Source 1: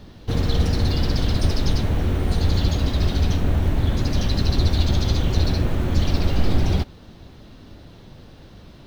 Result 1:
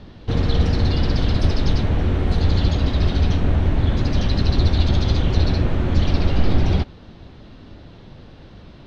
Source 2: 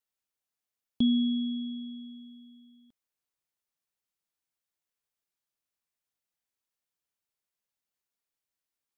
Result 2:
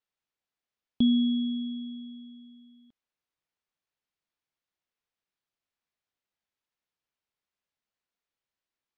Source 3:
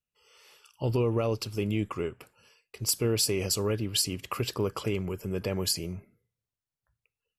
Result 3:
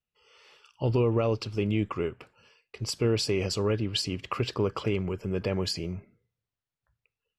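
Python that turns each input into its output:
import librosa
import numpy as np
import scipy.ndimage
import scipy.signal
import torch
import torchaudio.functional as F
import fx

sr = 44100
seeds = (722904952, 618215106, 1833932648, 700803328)

y = scipy.signal.sosfilt(scipy.signal.butter(2, 4300.0, 'lowpass', fs=sr, output='sos'), x)
y = F.gain(torch.from_numpy(y), 2.0).numpy()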